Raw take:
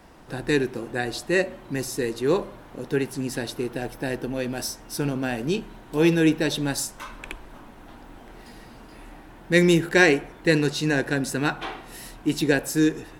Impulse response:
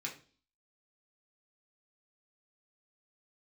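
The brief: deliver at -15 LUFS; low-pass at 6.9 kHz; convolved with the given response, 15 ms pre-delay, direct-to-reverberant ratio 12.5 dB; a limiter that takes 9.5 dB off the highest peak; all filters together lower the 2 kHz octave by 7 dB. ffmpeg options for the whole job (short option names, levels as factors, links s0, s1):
-filter_complex "[0:a]lowpass=6900,equalizer=f=2000:t=o:g=-9,alimiter=limit=0.168:level=0:latency=1,asplit=2[s0][s1];[1:a]atrim=start_sample=2205,adelay=15[s2];[s1][s2]afir=irnorm=-1:irlink=0,volume=0.224[s3];[s0][s3]amix=inputs=2:normalize=0,volume=4.22"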